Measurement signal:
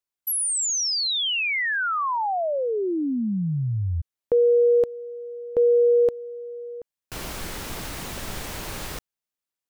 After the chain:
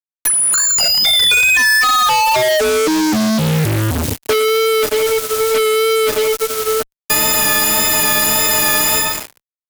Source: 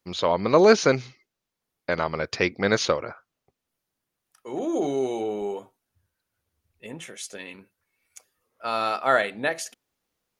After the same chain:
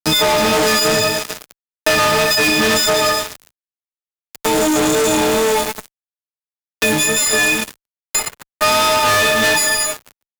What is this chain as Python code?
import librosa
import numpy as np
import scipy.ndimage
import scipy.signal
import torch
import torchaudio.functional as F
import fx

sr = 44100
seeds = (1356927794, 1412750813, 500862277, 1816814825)

p1 = fx.freq_snap(x, sr, grid_st=6)
p2 = fx.low_shelf(p1, sr, hz=120.0, db=-4.0)
p3 = fx.rider(p2, sr, range_db=5, speed_s=0.5)
p4 = p2 + (p3 * librosa.db_to_amplitude(0.0))
p5 = fx.quant_dither(p4, sr, seeds[0], bits=8, dither='triangular')
p6 = fx.wow_flutter(p5, sr, seeds[1], rate_hz=2.1, depth_cents=23.0)
p7 = fx.rev_double_slope(p6, sr, seeds[2], early_s=0.88, late_s=2.7, knee_db=-20, drr_db=5.5)
p8 = fx.fuzz(p7, sr, gain_db=33.0, gate_db=-32.0)
y = fx.band_squash(p8, sr, depth_pct=70)